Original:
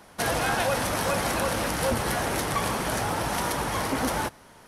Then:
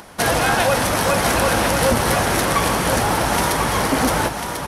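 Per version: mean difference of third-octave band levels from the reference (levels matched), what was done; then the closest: 2.0 dB: upward compressor, threshold -46 dBFS; on a send: echo 1.044 s -6.5 dB; on the sum: gain +8 dB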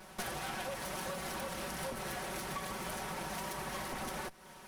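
3.5 dB: minimum comb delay 5.3 ms; compressor 6:1, threshold -38 dBFS, peak gain reduction 14.5 dB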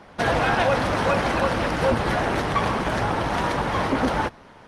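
5.0 dB: LPF 3800 Hz 12 dB/oct; gain +6 dB; Opus 24 kbps 48000 Hz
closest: first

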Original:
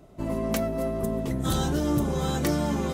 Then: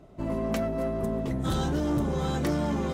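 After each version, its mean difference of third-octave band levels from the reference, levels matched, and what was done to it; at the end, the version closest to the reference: 2.5 dB: high shelf 6800 Hz -11.5 dB; soft clip -19.5 dBFS, distortion -19 dB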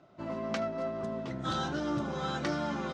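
5.5 dB: speaker cabinet 160–5300 Hz, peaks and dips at 170 Hz -3 dB, 250 Hz -6 dB, 430 Hz -8 dB, 1400 Hz +7 dB; echo 77 ms -21 dB; gain -4 dB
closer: first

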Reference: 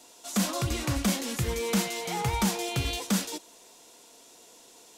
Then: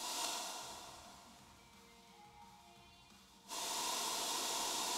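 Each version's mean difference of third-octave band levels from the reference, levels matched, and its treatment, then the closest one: 17.0 dB: ten-band EQ 500 Hz -5 dB, 1000 Hz +9 dB, 4000 Hz +6 dB; compressor 4:1, threshold -33 dBFS, peak gain reduction 11 dB; flipped gate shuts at -31 dBFS, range -38 dB; plate-style reverb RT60 3.2 s, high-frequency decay 0.75×, DRR -5.5 dB; gain +5 dB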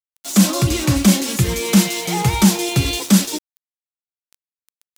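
7.0 dB: bell 210 Hz +10.5 dB 2.1 oct; notch comb 240 Hz; sample gate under -41.5 dBFS; high shelf 2000 Hz +7.5 dB; gain +6 dB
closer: second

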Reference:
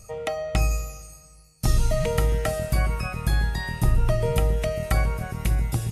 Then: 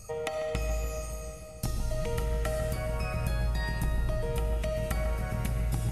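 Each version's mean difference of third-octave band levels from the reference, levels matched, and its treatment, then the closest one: 5.0 dB: compressor 4:1, threshold -31 dBFS, peak gain reduction 14 dB; darkening echo 0.145 s, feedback 83%, low-pass 1000 Hz, level -9 dB; digital reverb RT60 3.8 s, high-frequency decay 0.9×, pre-delay 25 ms, DRR 4.5 dB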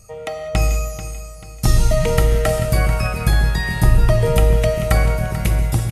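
3.0 dB: AGC gain up to 8 dB; feedback echo 0.438 s, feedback 44%, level -12.5 dB; non-linear reverb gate 0.22 s flat, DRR 9 dB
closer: second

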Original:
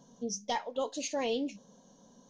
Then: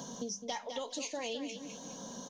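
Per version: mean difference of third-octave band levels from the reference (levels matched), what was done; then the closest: 10.5 dB: tilt shelf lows -3.5 dB, about 1100 Hz; compressor 3:1, threshold -45 dBFS, peak gain reduction 12 dB; on a send: feedback echo 0.207 s, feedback 24%, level -10.5 dB; on the sum: three-band squash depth 70%; gain +6 dB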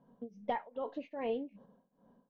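6.0 dB: gate -52 dBFS, range -9 dB; LPF 2200 Hz 24 dB/oct; compressor 3:1, threshold -37 dBFS, peak gain reduction 7 dB; tremolo triangle 2.5 Hz, depth 95%; gain +5.5 dB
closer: second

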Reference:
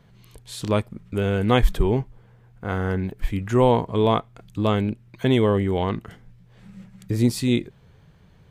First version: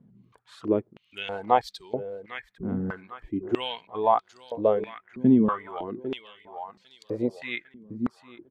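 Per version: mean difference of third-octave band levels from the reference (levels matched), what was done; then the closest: 10.0 dB: reverb removal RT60 1.6 s; feedback echo 0.801 s, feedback 37%, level -12.5 dB; stepped band-pass 3.1 Hz 230–4400 Hz; gain +8 dB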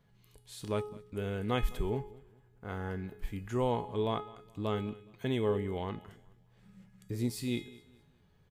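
3.0 dB: high shelf 12000 Hz +7 dB; resonator 420 Hz, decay 0.64 s, mix 80%; on a send: feedback echo 0.209 s, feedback 34%, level -21 dB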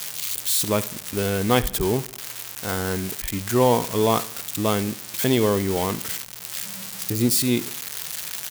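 14.0 dB: switching spikes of -15.5 dBFS; HPF 140 Hz 6 dB/oct; feedback echo 72 ms, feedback 47%, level -19.5 dB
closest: second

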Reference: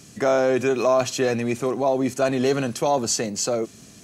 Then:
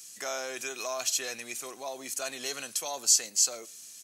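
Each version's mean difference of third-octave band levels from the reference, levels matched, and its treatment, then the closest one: 10.5 dB: differentiator; outdoor echo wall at 20 m, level -28 dB; gain +3.5 dB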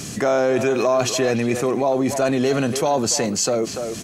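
4.0 dB: speakerphone echo 0.29 s, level -12 dB; fast leveller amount 50%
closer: second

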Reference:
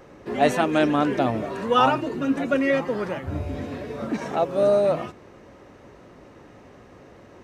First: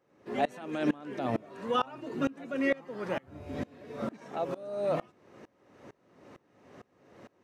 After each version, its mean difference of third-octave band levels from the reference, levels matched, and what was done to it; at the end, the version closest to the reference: 5.5 dB: HPF 120 Hz 12 dB/oct; limiter -15.5 dBFS, peak gain reduction 10.5 dB; dB-ramp tremolo swelling 2.2 Hz, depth 26 dB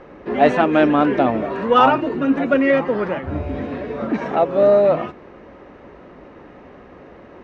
3.0 dB: LPF 2700 Hz 12 dB/oct; bell 110 Hz -9.5 dB 0.57 oct; in parallel at -10 dB: soft clip -16.5 dBFS, distortion -13 dB; on the sum: gain +4 dB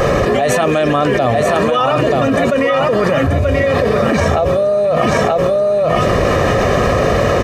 10.5 dB: comb 1.7 ms, depth 57%; echo 0.932 s -7 dB; fast leveller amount 100%; gain -1 dB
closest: second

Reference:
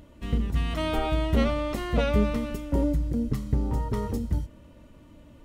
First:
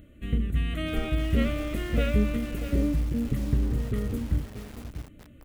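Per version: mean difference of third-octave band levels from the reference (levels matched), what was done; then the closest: 5.5 dB: fixed phaser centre 2200 Hz, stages 4; feedback echo 0.527 s, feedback 16%, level -18.5 dB; lo-fi delay 0.638 s, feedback 35%, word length 6-bit, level -10 dB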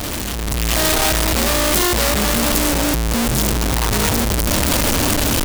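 16.0 dB: infinite clipping; high shelf 3600 Hz +10.5 dB; AGC gain up to 8.5 dB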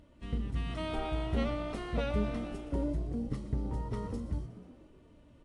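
3.0 dB: bell 7000 Hz -4.5 dB 0.48 oct; frequency-shifting echo 0.121 s, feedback 60%, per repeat +63 Hz, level -14.5 dB; gain -8.5 dB; AAC 48 kbps 22050 Hz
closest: third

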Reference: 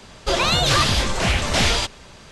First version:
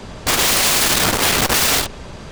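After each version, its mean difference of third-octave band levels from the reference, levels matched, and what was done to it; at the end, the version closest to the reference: 6.5 dB: tilt shelf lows +4.5 dB, about 1200 Hz; wrapped overs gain 18 dB; core saturation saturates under 110 Hz; gain +8 dB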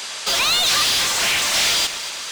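10.0 dB: tilt +4 dB/oct; overdrive pedal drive 24 dB, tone 7300 Hz, clips at -7.5 dBFS; on a send: echo with dull and thin repeats by turns 0.116 s, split 1100 Hz, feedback 71%, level -11 dB; on the sum: gain -6 dB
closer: first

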